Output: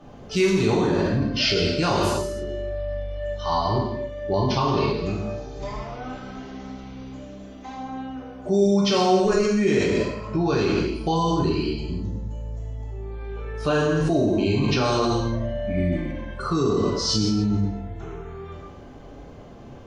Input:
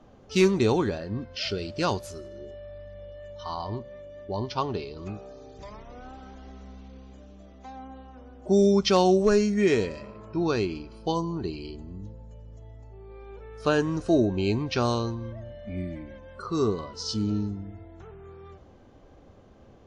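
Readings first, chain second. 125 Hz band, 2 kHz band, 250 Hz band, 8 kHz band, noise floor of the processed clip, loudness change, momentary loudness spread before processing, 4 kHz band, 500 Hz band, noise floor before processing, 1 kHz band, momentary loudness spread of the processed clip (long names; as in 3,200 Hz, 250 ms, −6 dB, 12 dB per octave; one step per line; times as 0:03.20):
+6.5 dB, +5.5 dB, +4.0 dB, +6.0 dB, −42 dBFS, +3.0 dB, 24 LU, +7.0 dB, +3.5 dB, −53 dBFS, +6.0 dB, 17 LU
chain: reverb whose tail is shaped and stops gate 340 ms falling, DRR −5.5 dB
in parallel at +3 dB: compressor whose output falls as the input rises −25 dBFS, ratio −1
on the sum: level −6 dB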